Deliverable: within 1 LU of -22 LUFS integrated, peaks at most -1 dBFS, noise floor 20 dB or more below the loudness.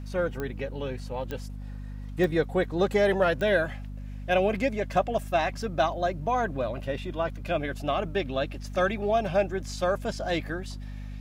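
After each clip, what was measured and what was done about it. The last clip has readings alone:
clicks 4; hum 50 Hz; harmonics up to 250 Hz; hum level -35 dBFS; loudness -28.0 LUFS; peak -10.0 dBFS; loudness target -22.0 LUFS
-> de-click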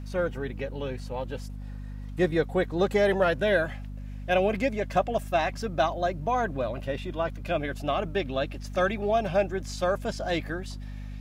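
clicks 0; hum 50 Hz; harmonics up to 250 Hz; hum level -35 dBFS
-> de-hum 50 Hz, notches 5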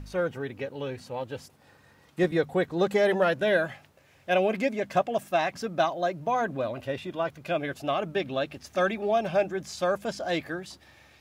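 hum none; loudness -28.0 LUFS; peak -10.5 dBFS; loudness target -22.0 LUFS
-> gain +6 dB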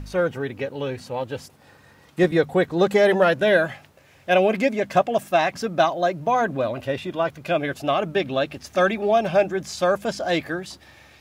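loudness -22.0 LUFS; peak -4.5 dBFS; noise floor -53 dBFS

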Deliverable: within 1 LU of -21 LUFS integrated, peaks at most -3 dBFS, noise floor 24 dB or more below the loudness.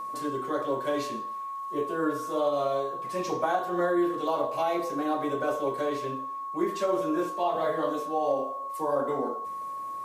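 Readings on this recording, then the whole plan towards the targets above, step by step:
steady tone 1100 Hz; tone level -33 dBFS; loudness -29.5 LUFS; peak -14.0 dBFS; loudness target -21.0 LUFS
-> notch 1100 Hz, Q 30; gain +8.5 dB

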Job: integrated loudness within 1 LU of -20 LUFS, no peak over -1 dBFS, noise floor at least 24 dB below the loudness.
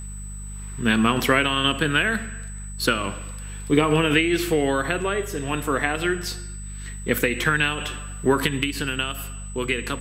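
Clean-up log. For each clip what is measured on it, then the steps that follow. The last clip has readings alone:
hum 50 Hz; harmonics up to 200 Hz; hum level -32 dBFS; steady tone 8000 Hz; tone level -40 dBFS; loudness -22.5 LUFS; peak -5.5 dBFS; loudness target -20.0 LUFS
-> de-hum 50 Hz, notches 4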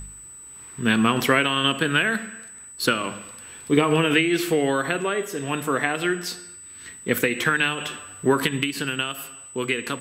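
hum none; steady tone 8000 Hz; tone level -40 dBFS
-> notch 8000 Hz, Q 30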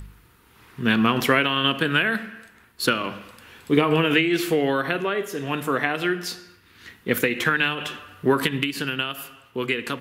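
steady tone none; loudness -23.0 LUFS; peak -5.0 dBFS; loudness target -20.0 LUFS
-> gain +3 dB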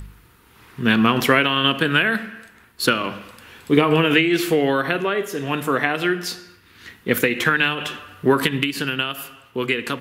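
loudness -20.0 LUFS; peak -2.0 dBFS; noise floor -52 dBFS

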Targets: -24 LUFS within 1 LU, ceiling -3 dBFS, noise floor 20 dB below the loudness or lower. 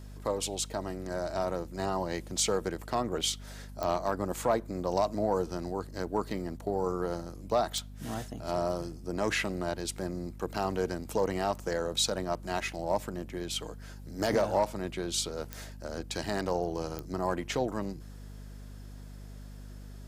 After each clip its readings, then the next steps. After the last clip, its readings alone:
clicks 4; hum 50 Hz; harmonics up to 250 Hz; hum level -43 dBFS; loudness -32.5 LUFS; peak -14.5 dBFS; loudness target -24.0 LUFS
-> de-click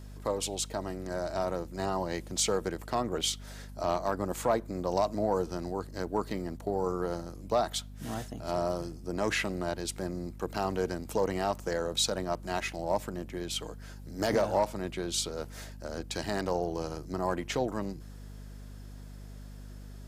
clicks 0; hum 50 Hz; harmonics up to 250 Hz; hum level -43 dBFS
-> notches 50/100/150/200/250 Hz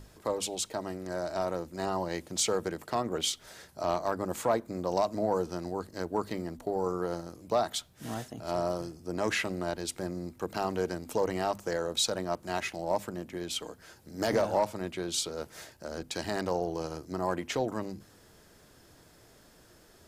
hum none; loudness -33.0 LUFS; peak -15.0 dBFS; loudness target -24.0 LUFS
-> gain +9 dB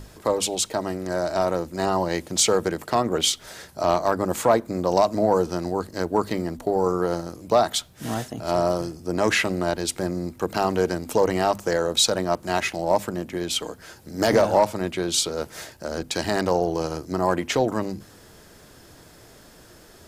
loudness -24.0 LUFS; peak -6.0 dBFS; noise floor -50 dBFS

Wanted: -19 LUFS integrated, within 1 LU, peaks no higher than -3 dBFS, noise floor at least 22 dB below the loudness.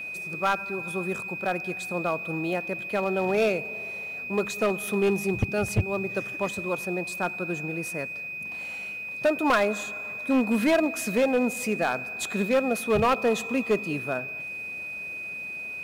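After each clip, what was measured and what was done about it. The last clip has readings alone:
clipped 1.1%; flat tops at -17.0 dBFS; steady tone 2500 Hz; tone level -33 dBFS; loudness -27.0 LUFS; peak -17.0 dBFS; loudness target -19.0 LUFS
-> clip repair -17 dBFS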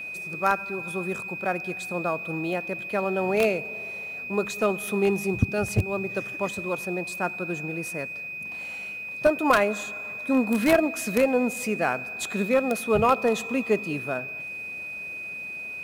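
clipped 0.0%; steady tone 2500 Hz; tone level -33 dBFS
-> notch 2500 Hz, Q 30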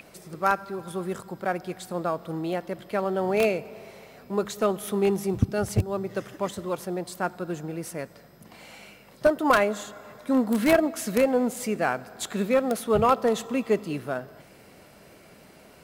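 steady tone none; loudness -26.5 LUFS; peak -7.5 dBFS; loudness target -19.0 LUFS
-> gain +7.5 dB; limiter -3 dBFS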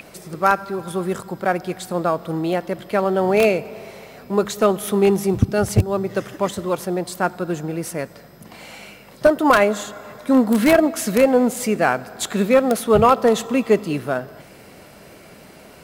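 loudness -19.5 LUFS; peak -3.0 dBFS; noise floor -45 dBFS

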